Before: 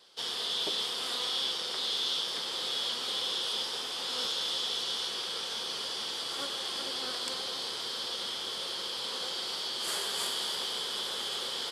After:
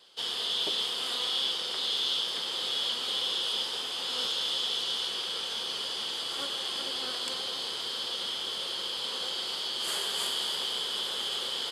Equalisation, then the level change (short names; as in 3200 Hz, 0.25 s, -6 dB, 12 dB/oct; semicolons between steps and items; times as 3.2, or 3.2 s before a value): bell 3000 Hz +5.5 dB 0.31 oct; notch 5600 Hz, Q 13; 0.0 dB